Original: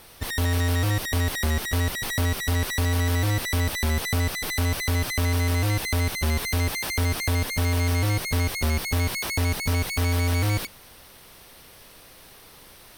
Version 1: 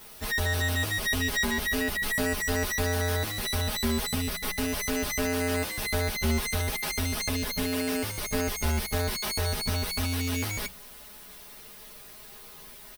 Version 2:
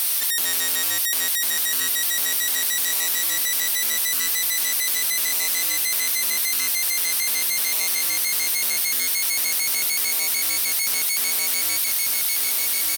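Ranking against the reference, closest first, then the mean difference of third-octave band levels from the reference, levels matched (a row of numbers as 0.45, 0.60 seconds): 1, 2; 4.0, 12.0 decibels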